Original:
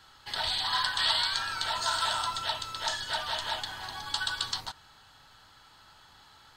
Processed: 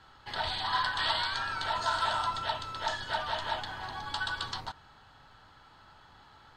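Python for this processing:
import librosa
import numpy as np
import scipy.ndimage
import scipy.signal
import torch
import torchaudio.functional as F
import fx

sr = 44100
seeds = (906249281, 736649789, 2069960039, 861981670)

y = fx.lowpass(x, sr, hz=1400.0, slope=6)
y = y * librosa.db_to_amplitude(3.5)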